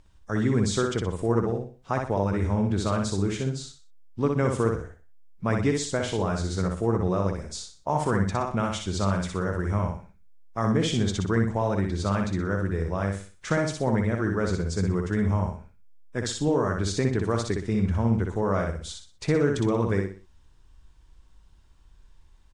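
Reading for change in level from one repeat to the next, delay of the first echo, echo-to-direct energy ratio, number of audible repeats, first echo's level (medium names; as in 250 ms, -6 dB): -9.5 dB, 61 ms, -3.5 dB, 4, -4.0 dB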